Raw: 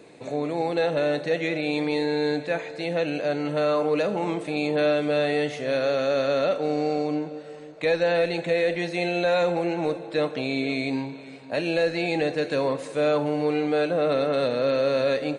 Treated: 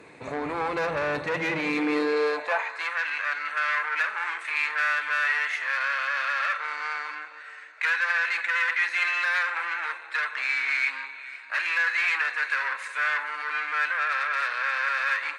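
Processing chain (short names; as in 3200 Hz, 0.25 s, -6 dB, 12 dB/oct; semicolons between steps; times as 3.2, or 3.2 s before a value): tube stage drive 26 dB, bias 0.55; band shelf 1500 Hz +9.5 dB; high-pass sweep 63 Hz -> 1600 Hz, 1.02–2.99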